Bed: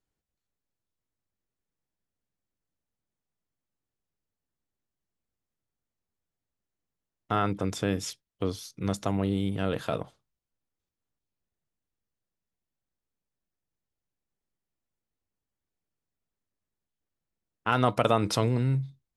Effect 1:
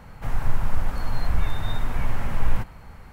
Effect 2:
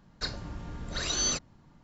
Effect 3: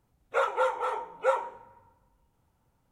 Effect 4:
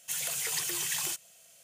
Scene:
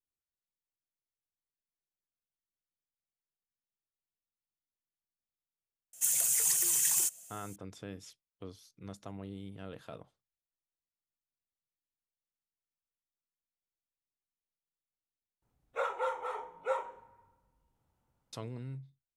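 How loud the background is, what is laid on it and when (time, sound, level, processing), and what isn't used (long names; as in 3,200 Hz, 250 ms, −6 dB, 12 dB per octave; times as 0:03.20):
bed −16.5 dB
0:05.93: mix in 4 −5.5 dB + high shelf with overshoot 5,400 Hz +9.5 dB, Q 1.5
0:15.42: overwrite with 3 −8 dB + double-tracking delay 40 ms −9.5 dB
not used: 1, 2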